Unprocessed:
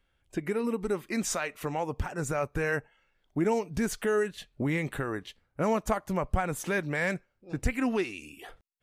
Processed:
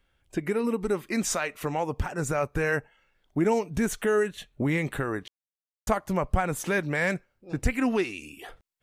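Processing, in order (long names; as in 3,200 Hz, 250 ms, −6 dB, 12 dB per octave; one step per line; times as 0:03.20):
0:03.70–0:04.65: parametric band 4,800 Hz −10 dB 0.2 octaves
0:05.28–0:05.87: silence
level +3 dB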